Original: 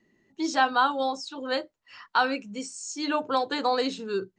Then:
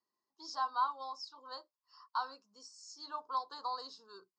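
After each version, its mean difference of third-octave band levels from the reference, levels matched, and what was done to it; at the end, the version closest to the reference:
7.0 dB: pair of resonant band-passes 2,300 Hz, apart 2.2 octaves
level −3.5 dB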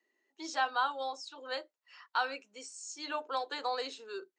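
3.5 dB: Bessel high-pass filter 530 Hz, order 8
level −7.5 dB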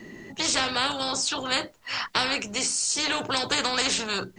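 13.0 dB: every bin compressed towards the loudest bin 4 to 1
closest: second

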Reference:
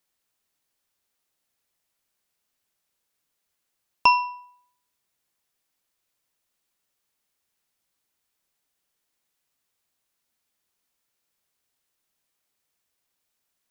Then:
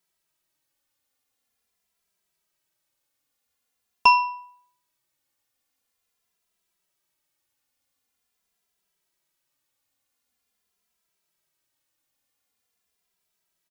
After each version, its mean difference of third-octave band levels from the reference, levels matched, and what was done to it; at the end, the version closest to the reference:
1.0 dB: in parallel at −7.5 dB: soft clipping −13 dBFS, distortion −13 dB
on the sum: barber-pole flanger 2.6 ms −0.45 Hz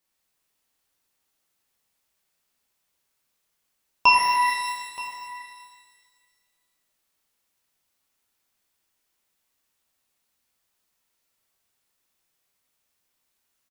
13.0 dB: single-tap delay 925 ms −18 dB
reverb with rising layers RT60 1.7 s, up +12 semitones, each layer −8 dB, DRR −4 dB
level −2.5 dB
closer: first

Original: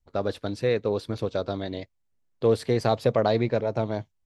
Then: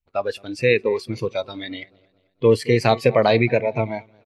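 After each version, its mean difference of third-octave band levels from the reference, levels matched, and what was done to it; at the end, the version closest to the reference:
5.0 dB: hum removal 376.1 Hz, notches 4
on a send: repeating echo 219 ms, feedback 44%, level −17 dB
on the sum: noise reduction from a noise print of the clip's start 15 dB
parametric band 2,500 Hz +12.5 dB 0.62 octaves
level +6 dB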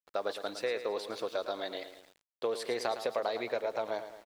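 9.5 dB: high-pass filter 600 Hz 12 dB per octave
downward compressor, threshold −29 dBFS, peak gain reduction 8.5 dB
on a send: repeating echo 110 ms, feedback 52%, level −11 dB
on the sum: centre clipping without the shift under −55 dBFS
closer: first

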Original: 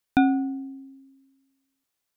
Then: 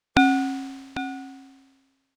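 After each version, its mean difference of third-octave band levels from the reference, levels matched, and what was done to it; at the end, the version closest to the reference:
10.0 dB: compressing power law on the bin magnitudes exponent 0.44
high-frequency loss of the air 110 metres
on a send: single-tap delay 798 ms −13 dB
on the sum: level +3 dB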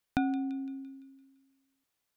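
2.0 dB: bass and treble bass +1 dB, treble −3 dB
downward compressor 2 to 1, threshold −35 dBFS, peak gain reduction 11 dB
on a send: delay with a high-pass on its return 170 ms, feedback 52%, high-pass 2,500 Hz, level −10.5 dB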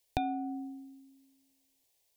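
3.0 dB: brickwall limiter −16 dBFS, peak gain reduction 8.5 dB
downward compressor 10 to 1, threshold −29 dBFS, peak gain reduction 9.5 dB
phaser with its sweep stopped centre 550 Hz, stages 4
level +7 dB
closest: second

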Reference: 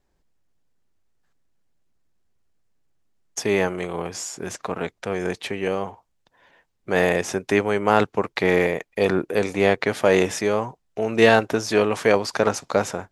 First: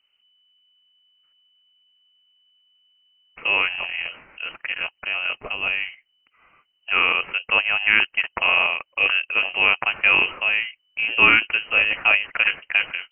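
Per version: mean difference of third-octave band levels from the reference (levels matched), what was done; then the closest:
14.0 dB: voice inversion scrambler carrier 3,000 Hz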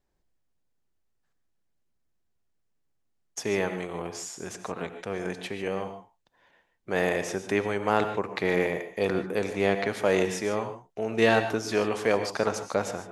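2.5 dB: reverb whose tail is shaped and stops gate 170 ms rising, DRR 9 dB
level −6.5 dB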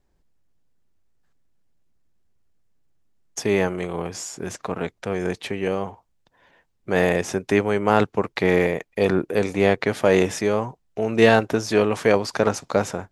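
1.5 dB: low-shelf EQ 320 Hz +5 dB
level −1.5 dB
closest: third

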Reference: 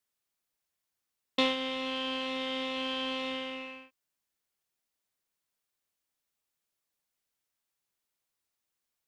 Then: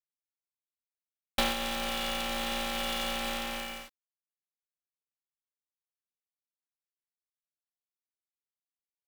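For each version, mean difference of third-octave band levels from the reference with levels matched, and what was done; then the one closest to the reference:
11.5 dB: downward compressor 1.5 to 1, threshold −41 dBFS, peak gain reduction 7 dB
log-companded quantiser 4 bits
ring modulator with a square carrier 290 Hz
level +5 dB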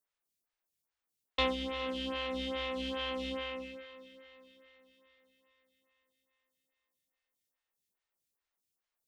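5.0 dB: sub-octave generator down 2 octaves, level −2 dB
feedback delay with all-pass diffusion 464 ms, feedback 51%, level −14.5 dB
phaser with staggered stages 2.4 Hz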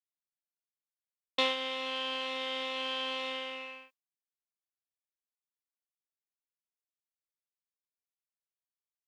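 3.5 dB: high-pass filter 450 Hz 12 dB per octave
noise gate with hold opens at −43 dBFS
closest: third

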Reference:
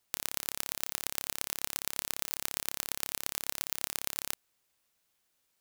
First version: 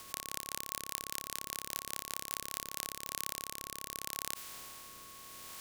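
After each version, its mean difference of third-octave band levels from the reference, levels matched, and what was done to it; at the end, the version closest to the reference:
2.5 dB: compressor on every frequency bin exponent 0.2
rotating-speaker cabinet horn 5 Hz, later 0.75 Hz, at 0:02.43
steady tone 1,100 Hz −50 dBFS
level −5 dB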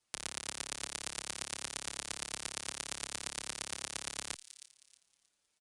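5.5 dB: on a send: delay with a high-pass on its return 315 ms, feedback 30%, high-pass 3,400 Hz, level −11 dB
on the sum: downsampling to 22,050 Hz
barber-pole flanger 6.2 ms +0.89 Hz
level +1 dB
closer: first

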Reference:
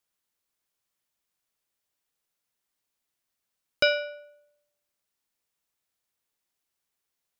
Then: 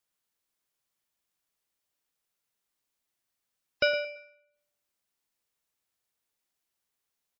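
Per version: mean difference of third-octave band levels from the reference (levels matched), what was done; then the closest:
3.0 dB: dynamic equaliser 3,500 Hz, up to −6 dB, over −44 dBFS, Q 3.3
in parallel at −11 dB: hard clipping −27 dBFS, distortion −4 dB
on the sum: repeating echo 112 ms, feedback 30%, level −10 dB
gate on every frequency bin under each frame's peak −30 dB strong
level −3.5 dB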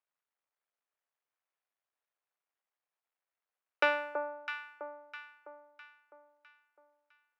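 9.5 dB: sub-harmonics by changed cycles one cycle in 2, muted
high-pass filter 230 Hz
three-way crossover with the lows and the highs turned down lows −22 dB, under 430 Hz, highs −20 dB, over 2,500 Hz
delay that swaps between a low-pass and a high-pass 328 ms, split 1,100 Hz, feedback 64%, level −5 dB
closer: first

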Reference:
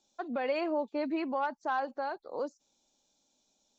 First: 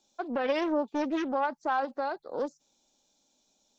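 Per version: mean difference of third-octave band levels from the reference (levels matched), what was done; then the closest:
2.5 dB: mains-hum notches 50/100/150 Hz
highs frequency-modulated by the lows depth 0.42 ms
level +3 dB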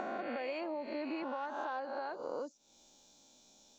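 6.0 dB: peak hold with a rise ahead of every peak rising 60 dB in 1.08 s
downward compressor 4 to 1, threshold −48 dBFS, peak gain reduction 18.5 dB
level +8 dB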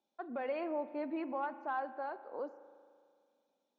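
3.5 dB: band-pass filter 210–2,300 Hz
spring reverb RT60 2.1 s, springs 37 ms, chirp 65 ms, DRR 13 dB
level −5.5 dB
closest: first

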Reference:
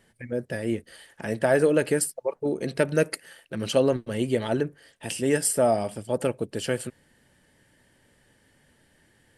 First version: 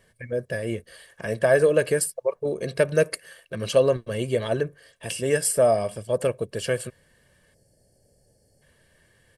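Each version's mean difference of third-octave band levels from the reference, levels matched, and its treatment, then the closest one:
1.5 dB: gain on a spectral selection 0:07.54–0:08.62, 870–4,200 Hz −20 dB
comb filter 1.8 ms, depth 56%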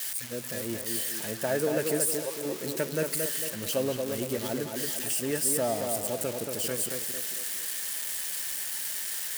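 13.0 dB: spike at every zero crossing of −16.5 dBFS
on a send: tape delay 227 ms, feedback 52%, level −3 dB, low-pass 2,000 Hz
on the sum: level −8 dB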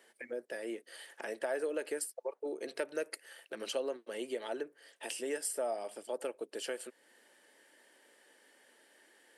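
6.5 dB: high-pass filter 340 Hz 24 dB per octave
downward compressor 2 to 1, threshold −44 dBFS, peak gain reduction 15 dB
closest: first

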